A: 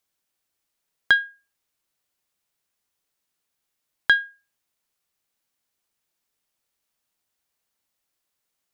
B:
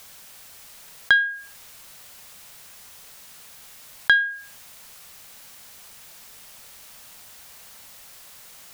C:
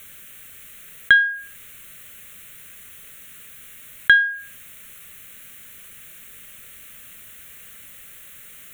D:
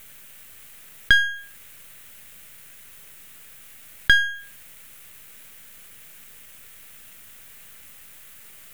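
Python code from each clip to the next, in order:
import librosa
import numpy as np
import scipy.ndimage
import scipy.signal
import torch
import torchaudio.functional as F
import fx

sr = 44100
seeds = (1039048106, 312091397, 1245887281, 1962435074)

y1 = fx.peak_eq(x, sr, hz=330.0, db=-10.0, octaves=0.49)
y1 = fx.env_flatten(y1, sr, amount_pct=50)
y2 = fx.fixed_phaser(y1, sr, hz=2100.0, stages=4)
y2 = y2 * librosa.db_to_amplitude(5.0)
y3 = np.where(y2 < 0.0, 10.0 ** (-12.0 / 20.0) * y2, y2)
y3 = fx.dmg_crackle(y3, sr, seeds[0], per_s=510.0, level_db=-52.0)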